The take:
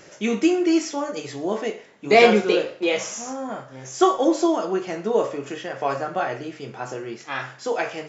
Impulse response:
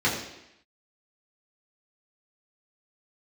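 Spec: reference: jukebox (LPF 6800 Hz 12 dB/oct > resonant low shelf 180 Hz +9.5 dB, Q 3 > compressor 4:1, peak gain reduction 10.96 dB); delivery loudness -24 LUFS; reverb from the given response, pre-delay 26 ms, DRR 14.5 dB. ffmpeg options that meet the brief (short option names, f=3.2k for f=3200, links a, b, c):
-filter_complex "[0:a]asplit=2[a][b];[1:a]atrim=start_sample=2205,adelay=26[c];[b][c]afir=irnorm=-1:irlink=0,volume=-29dB[d];[a][d]amix=inputs=2:normalize=0,lowpass=6.8k,lowshelf=f=180:t=q:w=3:g=9.5,acompressor=threshold=-22dB:ratio=4,volume=4dB"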